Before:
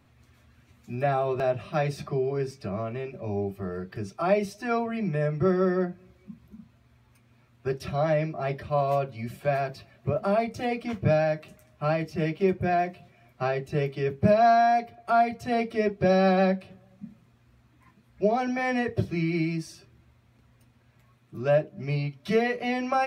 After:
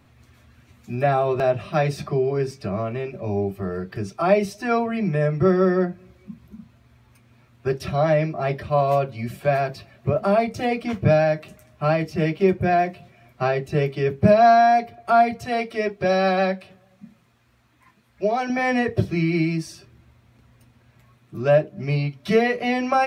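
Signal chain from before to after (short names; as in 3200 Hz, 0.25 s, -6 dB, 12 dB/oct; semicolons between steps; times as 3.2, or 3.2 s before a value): 15.45–18.5 low shelf 410 Hz -9.5 dB; gain +5.5 dB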